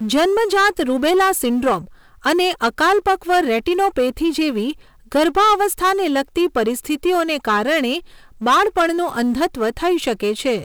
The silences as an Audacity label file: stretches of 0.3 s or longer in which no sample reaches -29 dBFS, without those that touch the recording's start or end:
1.820000	2.250000	silence
4.720000	5.120000	silence
7.990000	8.420000	silence